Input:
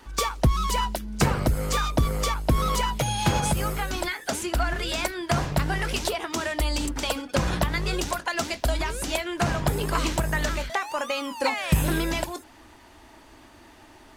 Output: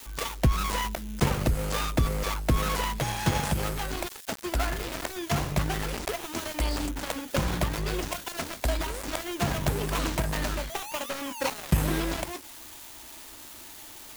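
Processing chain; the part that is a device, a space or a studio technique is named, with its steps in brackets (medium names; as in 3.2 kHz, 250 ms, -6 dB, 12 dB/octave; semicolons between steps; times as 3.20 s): budget class-D amplifier (dead-time distortion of 0.29 ms; zero-crossing glitches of -25 dBFS); trim -2 dB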